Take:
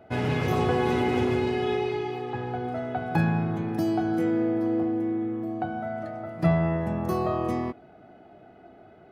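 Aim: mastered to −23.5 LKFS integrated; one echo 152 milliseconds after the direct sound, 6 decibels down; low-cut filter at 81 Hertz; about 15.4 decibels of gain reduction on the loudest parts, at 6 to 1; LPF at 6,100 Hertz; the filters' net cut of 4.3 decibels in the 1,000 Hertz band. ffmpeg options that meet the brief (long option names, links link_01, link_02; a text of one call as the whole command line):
ffmpeg -i in.wav -af "highpass=81,lowpass=6100,equalizer=frequency=1000:width_type=o:gain=-6.5,acompressor=threshold=-35dB:ratio=6,aecho=1:1:152:0.501,volume=12.5dB" out.wav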